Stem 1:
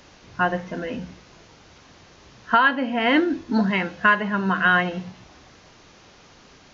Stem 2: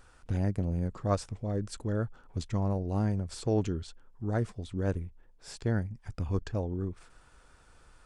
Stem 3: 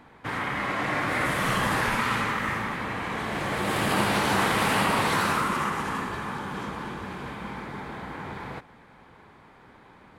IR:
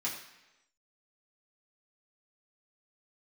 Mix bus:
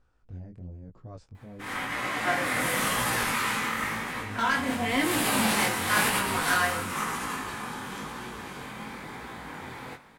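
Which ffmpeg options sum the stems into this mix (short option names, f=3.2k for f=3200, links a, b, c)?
-filter_complex "[0:a]highpass=f=180:w=0.5412,highpass=f=180:w=1.3066,asoftclip=type=hard:threshold=-15dB,adelay=1850,volume=-7dB,asplit=2[a][b];[b]volume=-4dB[c];[1:a]lowpass=6.4k,alimiter=level_in=1dB:limit=-24dB:level=0:latency=1:release=10,volume=-1dB,tiltshelf=f=750:g=4,volume=-9.5dB,asplit=3[d][e][f];[d]atrim=end=1.86,asetpts=PTS-STARTPTS,afade=t=out:st=1.856:d=0.004:c=hsin[g];[e]atrim=start=1.86:end=4.11,asetpts=PTS-STARTPTS,volume=0[h];[f]atrim=start=4.11,asetpts=PTS-STARTPTS,afade=t=in:d=0.004:c=hsin[i];[g][h][i]concat=n=3:v=0:a=1,asplit=2[j][k];[2:a]crystalizer=i=2.5:c=0,adelay=1350,volume=-2.5dB,asplit=2[l][m];[m]volume=-10.5dB[n];[k]apad=whole_len=508878[o];[l][o]sidechaincompress=threshold=-44dB:ratio=8:attack=22:release=172[p];[3:a]atrim=start_sample=2205[q];[c][n]amix=inputs=2:normalize=0[r];[r][q]afir=irnorm=-1:irlink=0[s];[a][j][p][s]amix=inputs=4:normalize=0,flanger=delay=16.5:depth=7.3:speed=0.97"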